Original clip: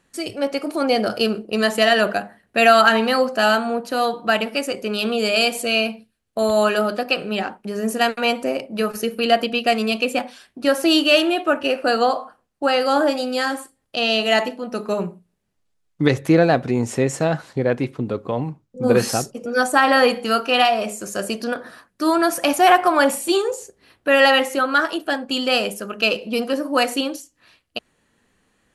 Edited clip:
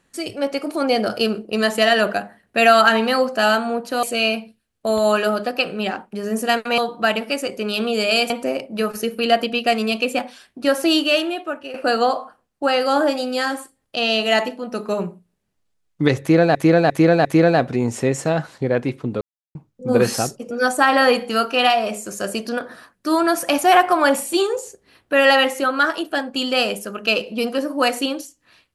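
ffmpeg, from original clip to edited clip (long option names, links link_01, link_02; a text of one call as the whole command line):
ffmpeg -i in.wav -filter_complex "[0:a]asplit=10[link_01][link_02][link_03][link_04][link_05][link_06][link_07][link_08][link_09][link_10];[link_01]atrim=end=4.032[link_11];[link_02]atrim=start=5.548:end=8.302[link_12];[link_03]atrim=start=4.028:end=5.552[link_13];[link_04]atrim=start=8.298:end=11.74,asetpts=PTS-STARTPTS,afade=type=out:start_time=2.512:duration=0.93:silence=0.188365[link_14];[link_05]atrim=start=11.74:end=16.552,asetpts=PTS-STARTPTS,afade=type=in:duration=0.004:curve=hsin:silence=0.188365[link_15];[link_06]atrim=start=16.198:end=16.552[link_16];[link_07]atrim=start=16.198:end=16.552[link_17];[link_08]atrim=start=16.198:end=18.16,asetpts=PTS-STARTPTS,afade=type=out:start_time=1.958:duration=0.004:curve=hsin[link_18];[link_09]atrim=start=18.16:end=18.5,asetpts=PTS-STARTPTS,volume=0[link_19];[link_10]atrim=start=18.5,asetpts=PTS-STARTPTS,afade=type=in:duration=0.004:curve=hsin[link_20];[link_11][link_12]acrossfade=duration=0.004:curve1=hsin:curve2=hsin[link_21];[link_21][link_13]acrossfade=duration=0.004:curve1=hsin:curve2=hsin[link_22];[link_14][link_15]concat=n=2:v=0:a=1[link_23];[link_22][link_23]acrossfade=duration=0.004:curve1=hsin:curve2=hsin[link_24];[link_24][link_16]acrossfade=duration=0.004:curve1=hsin:curve2=hsin[link_25];[link_25][link_17]acrossfade=duration=0.004:curve1=hsin:curve2=hsin[link_26];[link_18][link_19][link_20]concat=n=3:v=0:a=1[link_27];[link_26][link_27]acrossfade=duration=0.004:curve1=hsin:curve2=hsin" out.wav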